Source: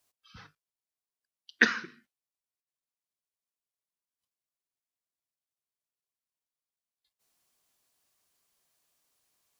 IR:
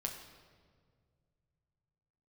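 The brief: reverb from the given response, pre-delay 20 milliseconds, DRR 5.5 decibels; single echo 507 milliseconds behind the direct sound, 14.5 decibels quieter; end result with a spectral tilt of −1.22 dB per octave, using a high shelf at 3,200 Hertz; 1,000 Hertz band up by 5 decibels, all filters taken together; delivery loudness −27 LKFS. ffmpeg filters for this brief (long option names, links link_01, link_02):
-filter_complex "[0:a]equalizer=frequency=1000:width_type=o:gain=6,highshelf=frequency=3200:gain=8.5,aecho=1:1:507:0.188,asplit=2[link_01][link_02];[1:a]atrim=start_sample=2205,adelay=20[link_03];[link_02][link_03]afir=irnorm=-1:irlink=0,volume=-5.5dB[link_04];[link_01][link_04]amix=inputs=2:normalize=0,volume=-2dB"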